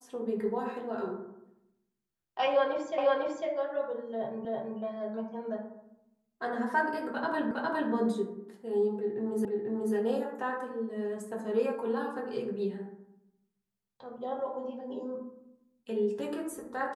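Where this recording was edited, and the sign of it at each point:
2.98 s: repeat of the last 0.5 s
4.45 s: repeat of the last 0.33 s
7.51 s: repeat of the last 0.41 s
9.45 s: repeat of the last 0.49 s

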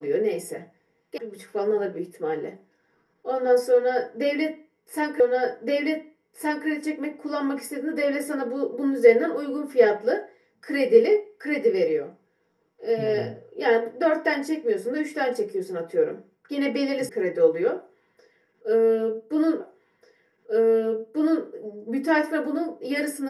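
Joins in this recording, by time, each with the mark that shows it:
1.18 s: sound stops dead
5.20 s: repeat of the last 1.47 s
17.09 s: sound stops dead
19.60 s: repeat of the last 1.84 s

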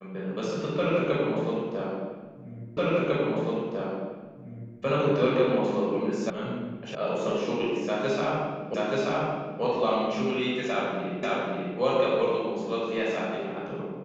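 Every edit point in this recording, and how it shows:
2.77 s: repeat of the last 2 s
6.30 s: sound stops dead
6.95 s: sound stops dead
8.74 s: repeat of the last 0.88 s
11.23 s: repeat of the last 0.54 s

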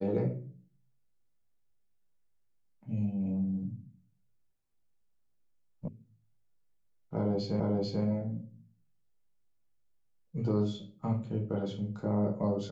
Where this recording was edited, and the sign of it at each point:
5.88 s: sound stops dead
7.60 s: repeat of the last 0.44 s

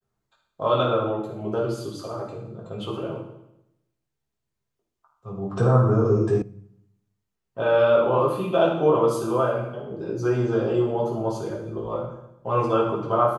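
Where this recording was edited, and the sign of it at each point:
6.42 s: sound stops dead

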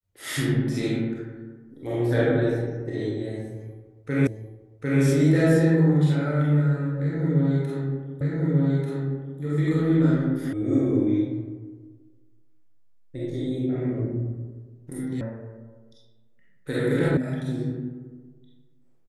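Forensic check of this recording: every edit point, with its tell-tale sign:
4.27 s: repeat of the last 0.75 s
8.21 s: repeat of the last 1.19 s
10.53 s: sound stops dead
15.21 s: sound stops dead
17.17 s: sound stops dead

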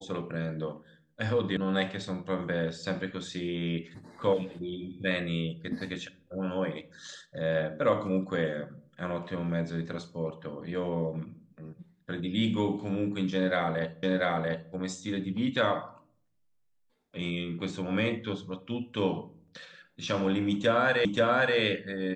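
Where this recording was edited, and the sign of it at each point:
1.57 s: sound stops dead
14.03 s: repeat of the last 0.69 s
21.05 s: repeat of the last 0.53 s

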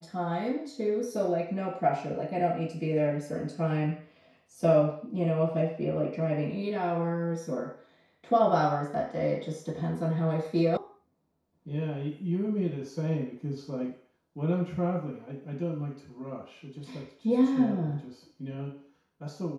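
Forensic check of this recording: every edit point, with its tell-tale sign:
10.77 s: sound stops dead

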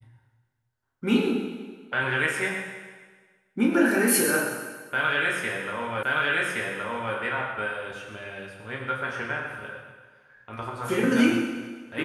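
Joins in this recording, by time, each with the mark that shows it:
6.03 s: repeat of the last 1.12 s

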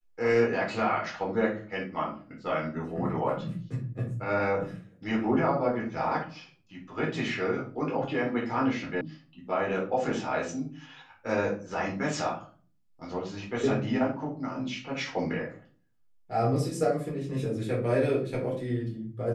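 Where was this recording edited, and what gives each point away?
9.01 s: sound stops dead

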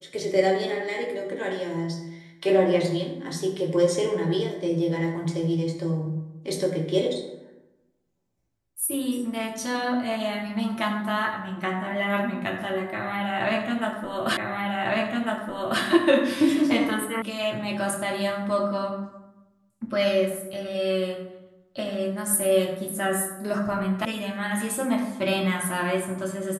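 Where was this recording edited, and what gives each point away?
14.37 s: repeat of the last 1.45 s
17.22 s: sound stops dead
24.05 s: sound stops dead

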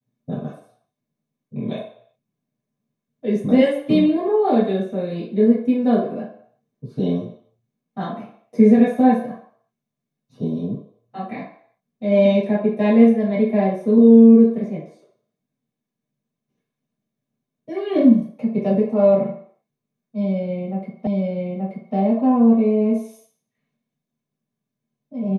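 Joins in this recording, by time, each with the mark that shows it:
21.07 s: repeat of the last 0.88 s

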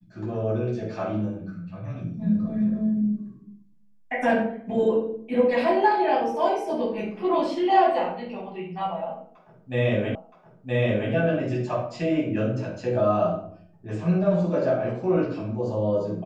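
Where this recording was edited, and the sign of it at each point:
10.15 s: repeat of the last 0.97 s

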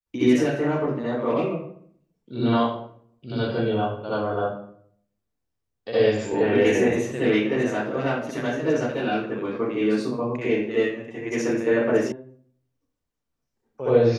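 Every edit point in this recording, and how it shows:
12.12 s: sound stops dead

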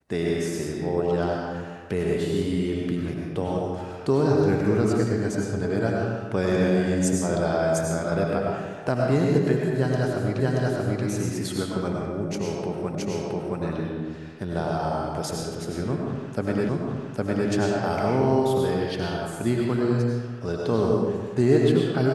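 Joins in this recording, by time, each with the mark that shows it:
10.40 s: repeat of the last 0.63 s
12.95 s: repeat of the last 0.67 s
16.69 s: repeat of the last 0.81 s

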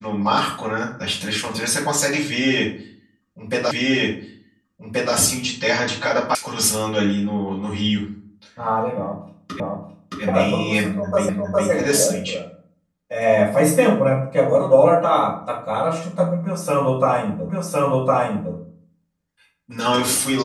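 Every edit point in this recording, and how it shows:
3.71 s: repeat of the last 1.43 s
6.35 s: sound stops dead
9.60 s: repeat of the last 0.62 s
11.29 s: repeat of the last 0.41 s
17.49 s: repeat of the last 1.06 s

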